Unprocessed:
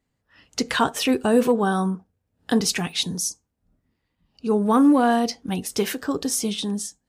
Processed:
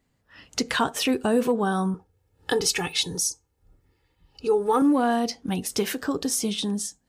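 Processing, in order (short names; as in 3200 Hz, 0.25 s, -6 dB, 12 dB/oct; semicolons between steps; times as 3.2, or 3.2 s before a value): 1.94–4.82 comb 2.3 ms, depth 83%; compressor 1.5:1, threshold -39 dBFS, peak gain reduction 9.5 dB; gain +5 dB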